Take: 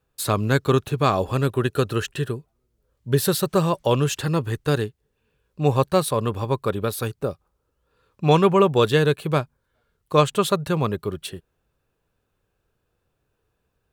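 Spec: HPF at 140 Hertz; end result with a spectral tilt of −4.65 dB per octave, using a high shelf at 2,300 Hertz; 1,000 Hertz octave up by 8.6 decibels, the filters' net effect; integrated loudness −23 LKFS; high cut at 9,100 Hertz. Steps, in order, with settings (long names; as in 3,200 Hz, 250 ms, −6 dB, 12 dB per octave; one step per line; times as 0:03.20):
high-pass filter 140 Hz
low-pass filter 9,100 Hz
parametric band 1,000 Hz +9 dB
high-shelf EQ 2,300 Hz +6 dB
level −4 dB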